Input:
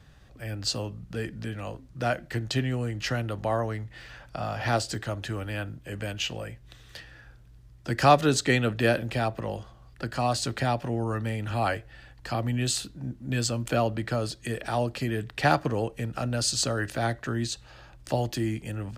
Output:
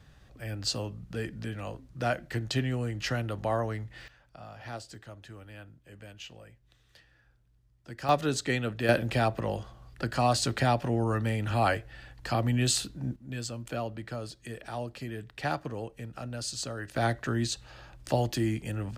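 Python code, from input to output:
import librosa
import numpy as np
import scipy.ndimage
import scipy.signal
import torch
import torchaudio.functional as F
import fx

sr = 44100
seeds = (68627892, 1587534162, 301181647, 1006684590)

y = fx.gain(x, sr, db=fx.steps((0.0, -2.0), (4.08, -14.5), (8.09, -6.0), (8.89, 1.0), (13.16, -9.0), (16.96, 0.0)))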